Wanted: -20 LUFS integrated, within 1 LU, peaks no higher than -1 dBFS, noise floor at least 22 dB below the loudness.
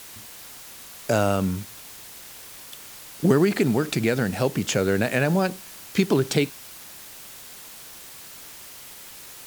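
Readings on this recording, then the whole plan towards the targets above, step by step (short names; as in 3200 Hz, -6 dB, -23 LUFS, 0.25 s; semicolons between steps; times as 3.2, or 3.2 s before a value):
noise floor -43 dBFS; noise floor target -45 dBFS; loudness -23.0 LUFS; peak -5.5 dBFS; loudness target -20.0 LUFS
-> noise print and reduce 6 dB; gain +3 dB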